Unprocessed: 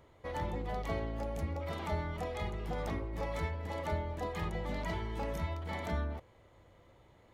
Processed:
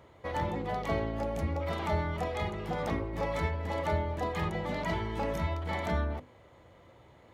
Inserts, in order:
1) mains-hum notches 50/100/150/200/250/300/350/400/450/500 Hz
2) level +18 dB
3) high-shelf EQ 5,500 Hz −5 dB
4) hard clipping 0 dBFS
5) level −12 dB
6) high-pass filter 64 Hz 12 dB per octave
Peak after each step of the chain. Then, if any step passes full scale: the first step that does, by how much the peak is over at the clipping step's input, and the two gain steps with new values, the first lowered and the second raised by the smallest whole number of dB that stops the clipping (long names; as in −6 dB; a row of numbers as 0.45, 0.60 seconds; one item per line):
−24.0, −6.0, −6.0, −6.0, −18.0, −17.0 dBFS
no step passes full scale